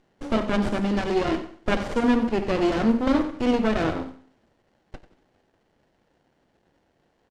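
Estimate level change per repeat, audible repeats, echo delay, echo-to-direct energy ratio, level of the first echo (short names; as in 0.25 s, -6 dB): -11.0 dB, 2, 92 ms, -13.5 dB, -14.0 dB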